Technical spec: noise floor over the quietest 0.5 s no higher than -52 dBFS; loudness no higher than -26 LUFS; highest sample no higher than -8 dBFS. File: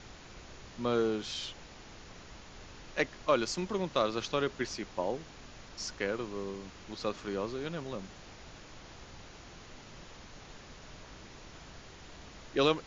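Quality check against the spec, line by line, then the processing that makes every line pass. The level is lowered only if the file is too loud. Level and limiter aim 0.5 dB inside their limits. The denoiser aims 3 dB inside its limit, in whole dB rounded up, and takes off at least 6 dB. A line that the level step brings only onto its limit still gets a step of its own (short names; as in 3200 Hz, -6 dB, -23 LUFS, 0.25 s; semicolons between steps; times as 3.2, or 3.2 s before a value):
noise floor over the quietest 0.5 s -50 dBFS: fail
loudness -34.5 LUFS: OK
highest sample -13.5 dBFS: OK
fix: denoiser 6 dB, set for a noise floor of -50 dBFS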